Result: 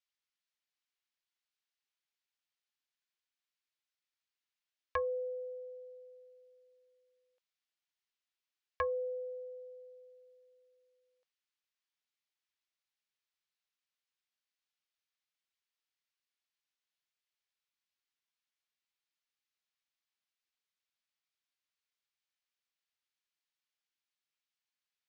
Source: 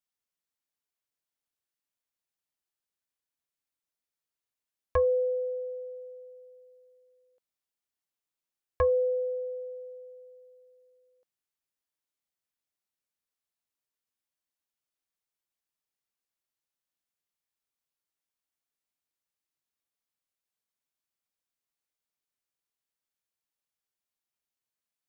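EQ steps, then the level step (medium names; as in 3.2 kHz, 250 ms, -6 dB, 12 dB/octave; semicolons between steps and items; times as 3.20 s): distance through air 160 m; tilt shelf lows -8.5 dB, about 1.2 kHz; bass shelf 490 Hz -9.5 dB; 0.0 dB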